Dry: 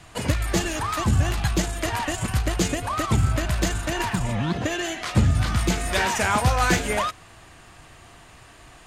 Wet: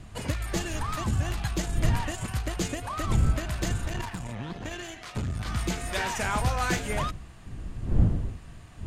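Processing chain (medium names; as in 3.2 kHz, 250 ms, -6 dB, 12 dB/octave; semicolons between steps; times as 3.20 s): wind noise 99 Hz -24 dBFS; 3.87–5.46 s: valve stage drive 18 dB, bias 0.75; trim -7 dB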